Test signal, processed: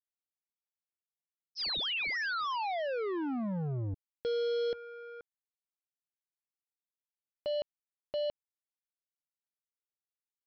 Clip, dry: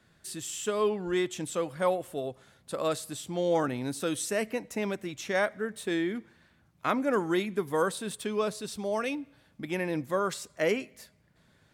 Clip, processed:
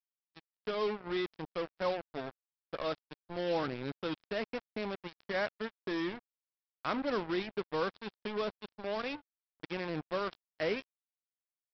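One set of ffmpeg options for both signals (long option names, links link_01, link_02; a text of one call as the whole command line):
ffmpeg -i in.wav -af "equalizer=frequency=70:width=5.3:gain=-7.5,aresample=11025,acrusher=bits=4:mix=0:aa=0.5,aresample=44100,volume=-6.5dB" out.wav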